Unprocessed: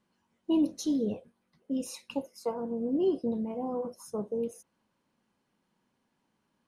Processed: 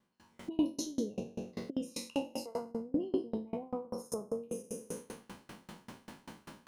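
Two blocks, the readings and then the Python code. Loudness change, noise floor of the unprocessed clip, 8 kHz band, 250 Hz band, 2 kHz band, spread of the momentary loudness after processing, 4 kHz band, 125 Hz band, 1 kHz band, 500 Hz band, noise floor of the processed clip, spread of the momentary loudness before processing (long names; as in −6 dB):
−6.0 dB, −78 dBFS, 0.0 dB, −5.5 dB, +2.5 dB, 18 LU, −0.5 dB, −1.5 dB, −4.0 dB, −5.5 dB, −68 dBFS, 10 LU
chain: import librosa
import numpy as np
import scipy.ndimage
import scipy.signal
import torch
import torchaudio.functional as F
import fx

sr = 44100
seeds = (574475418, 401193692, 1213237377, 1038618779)

y = fx.spec_trails(x, sr, decay_s=0.95)
y = fx.recorder_agc(y, sr, target_db=-25.0, rise_db_per_s=68.0, max_gain_db=30)
y = fx.tremolo_decay(y, sr, direction='decaying', hz=5.1, depth_db=28)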